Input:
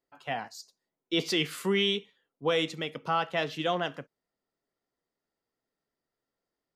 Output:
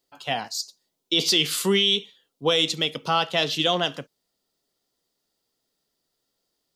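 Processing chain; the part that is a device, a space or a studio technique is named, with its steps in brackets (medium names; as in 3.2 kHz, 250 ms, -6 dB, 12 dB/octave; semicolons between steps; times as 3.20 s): over-bright horn tweeter (resonant high shelf 2.7 kHz +8.5 dB, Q 1.5; peak limiter -16 dBFS, peak gain reduction 6.5 dB); trim +6 dB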